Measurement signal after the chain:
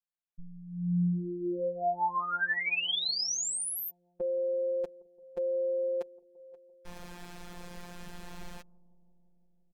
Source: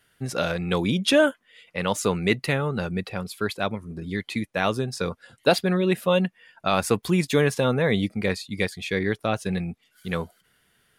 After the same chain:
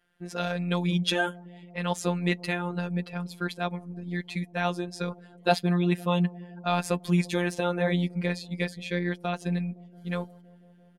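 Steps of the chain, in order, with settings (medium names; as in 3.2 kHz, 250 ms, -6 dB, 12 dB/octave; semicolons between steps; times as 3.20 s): treble shelf 11 kHz -10.5 dB; comb 4.5 ms, depth 67%; robot voice 176 Hz; on a send: bucket-brigade echo 170 ms, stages 1024, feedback 81%, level -23.5 dB; on the sum: tape noise reduction on one side only decoder only; trim -3.5 dB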